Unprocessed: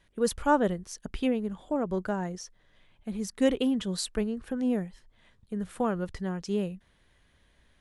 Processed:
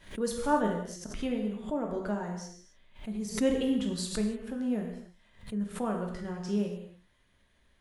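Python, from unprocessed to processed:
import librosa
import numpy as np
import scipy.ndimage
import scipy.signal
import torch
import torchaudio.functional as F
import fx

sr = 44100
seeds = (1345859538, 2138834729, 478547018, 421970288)

y = fx.peak_eq(x, sr, hz=71.0, db=11.5, octaves=2.0, at=(3.25, 4.0))
y = fx.rev_gated(y, sr, seeds[0], gate_ms=320, shape='falling', drr_db=0.5)
y = fx.pre_swell(y, sr, db_per_s=140.0)
y = y * librosa.db_to_amplitude(-6.0)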